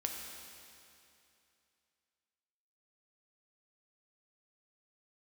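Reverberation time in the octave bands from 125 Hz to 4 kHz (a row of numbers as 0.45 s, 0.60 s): 2.8 s, 2.7 s, 2.7 s, 2.7 s, 2.7 s, 2.6 s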